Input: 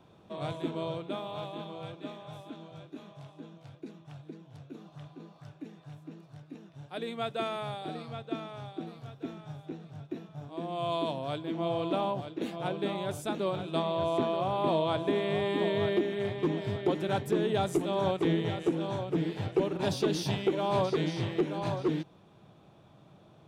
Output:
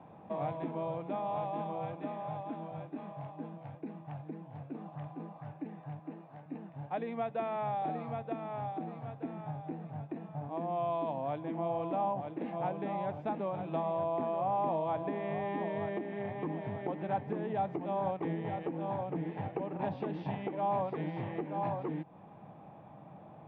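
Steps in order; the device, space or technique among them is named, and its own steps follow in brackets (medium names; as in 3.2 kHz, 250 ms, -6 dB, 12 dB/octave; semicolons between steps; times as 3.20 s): 5.99–6.46 s: high-pass 230 Hz; bass amplifier (compression 3:1, threshold -40 dBFS, peak gain reduction 13.5 dB; cabinet simulation 73–2100 Hz, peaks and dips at 80 Hz -8 dB, 120 Hz -5 dB, 380 Hz -8 dB, 810 Hz +7 dB, 1.4 kHz -8 dB); trim +6 dB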